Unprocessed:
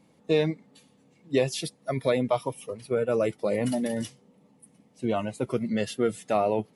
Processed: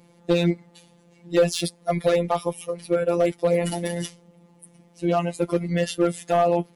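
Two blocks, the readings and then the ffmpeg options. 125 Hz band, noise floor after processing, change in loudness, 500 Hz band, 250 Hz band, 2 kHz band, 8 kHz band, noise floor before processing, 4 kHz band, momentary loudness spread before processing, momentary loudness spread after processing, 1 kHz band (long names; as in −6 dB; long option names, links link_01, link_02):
+5.5 dB, −57 dBFS, +4.0 dB, +4.0 dB, +3.5 dB, +3.5 dB, +5.5 dB, −62 dBFS, +4.5 dB, 8 LU, 8 LU, +5.5 dB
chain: -af "afftfilt=real='hypot(re,im)*cos(PI*b)':imag='0':win_size=1024:overlap=0.75,volume=20dB,asoftclip=hard,volume=-20dB,volume=9dB"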